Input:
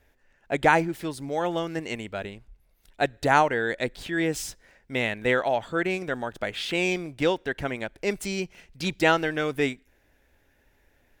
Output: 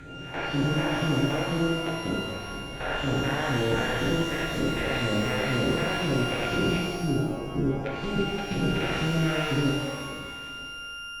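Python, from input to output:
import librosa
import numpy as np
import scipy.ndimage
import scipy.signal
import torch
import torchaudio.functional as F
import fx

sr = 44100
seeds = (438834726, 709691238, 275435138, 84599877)

y = fx.spec_blur(x, sr, span_ms=1150.0)
y = fx.phaser_stages(y, sr, stages=2, low_hz=180.0, high_hz=1600.0, hz=2.0, feedback_pct=40)
y = fx.env_lowpass_down(y, sr, base_hz=2600.0, full_db=-33.5)
y = y + 10.0 ** (-43.0 / 20.0) * np.sin(2.0 * np.pi * 1400.0 * np.arange(len(y)) / sr)
y = fx.spec_box(y, sr, start_s=6.82, length_s=1.02, low_hz=460.0, high_hz=4800.0, gain_db=-29)
y = fx.level_steps(y, sr, step_db=13)
y = fx.low_shelf(y, sr, hz=430.0, db=10.0)
y = fx.rev_shimmer(y, sr, seeds[0], rt60_s=1.3, semitones=12, shimmer_db=-8, drr_db=-2.0)
y = F.gain(torch.from_numpy(y), 3.5).numpy()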